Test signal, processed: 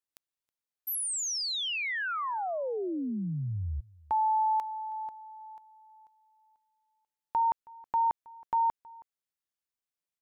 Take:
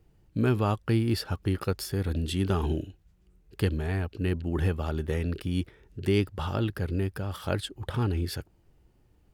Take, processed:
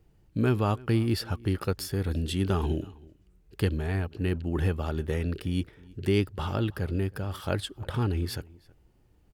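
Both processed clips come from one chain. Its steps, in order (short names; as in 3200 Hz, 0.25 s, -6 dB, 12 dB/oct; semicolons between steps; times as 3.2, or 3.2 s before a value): outdoor echo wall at 55 m, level -23 dB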